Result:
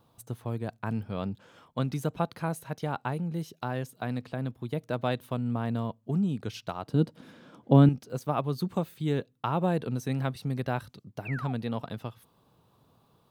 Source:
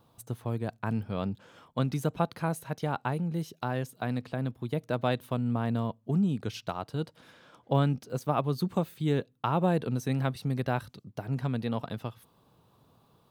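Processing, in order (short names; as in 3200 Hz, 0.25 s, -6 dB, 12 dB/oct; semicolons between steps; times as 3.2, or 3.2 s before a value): 6.87–7.89 bell 230 Hz +14 dB 1.7 oct; 11.25–11.53 painted sound fall 670–2800 Hz -39 dBFS; gain -1 dB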